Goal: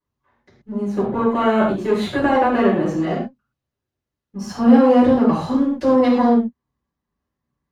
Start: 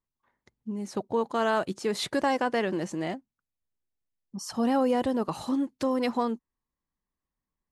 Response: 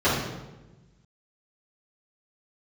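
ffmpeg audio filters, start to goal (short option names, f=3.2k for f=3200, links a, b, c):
-filter_complex "[0:a]aeval=exprs='if(lt(val(0),0),0.447*val(0),val(0))':c=same,asettb=1/sr,asplit=3[a][b][c];[a]atrim=end=0.844[d];[b]atrim=start=0.84:end=2.87,asetpts=PTS-STARTPTS,afade=t=in:d=0.004:c=qsin,afade=t=out:st=2.026:d=0.004:c=qsin,equalizer=f=5.3k:t=o:w=0.55:g=-11.5[e];[c]atrim=start=2.866[f];[d][e]acrossfade=d=0.004:c1=hsin:c2=qsin[g];[g][f]acrossfade=d=0.004:c1=qsin:c2=hsin[h];[1:a]atrim=start_sample=2205,atrim=end_sample=6174[i];[h][i]afir=irnorm=-1:irlink=0,volume=-7dB"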